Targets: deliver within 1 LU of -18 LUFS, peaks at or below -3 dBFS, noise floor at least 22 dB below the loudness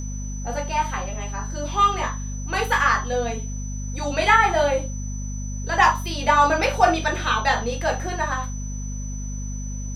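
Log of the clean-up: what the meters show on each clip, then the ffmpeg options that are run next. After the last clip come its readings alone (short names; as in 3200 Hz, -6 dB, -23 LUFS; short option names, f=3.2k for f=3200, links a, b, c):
hum 50 Hz; harmonics up to 250 Hz; hum level -27 dBFS; steady tone 6000 Hz; tone level -38 dBFS; loudness -22.5 LUFS; peak -3.0 dBFS; loudness target -18.0 LUFS
-> -af "bandreject=f=50:t=h:w=4,bandreject=f=100:t=h:w=4,bandreject=f=150:t=h:w=4,bandreject=f=200:t=h:w=4,bandreject=f=250:t=h:w=4"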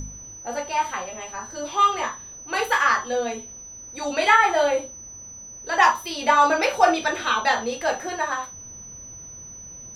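hum none; steady tone 6000 Hz; tone level -38 dBFS
-> -af "bandreject=f=6k:w=30"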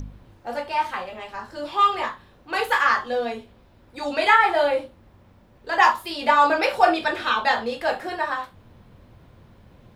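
steady tone none; loudness -21.5 LUFS; peak -3.5 dBFS; loudness target -18.0 LUFS
-> -af "volume=3.5dB,alimiter=limit=-3dB:level=0:latency=1"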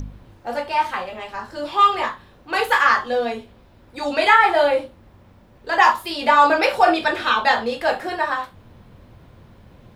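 loudness -18.5 LUFS; peak -3.0 dBFS; noise floor -50 dBFS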